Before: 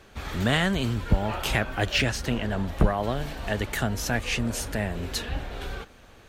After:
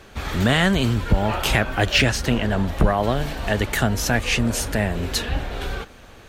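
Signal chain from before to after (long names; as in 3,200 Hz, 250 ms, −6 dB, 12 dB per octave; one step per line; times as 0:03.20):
boost into a limiter +11.5 dB
level −5 dB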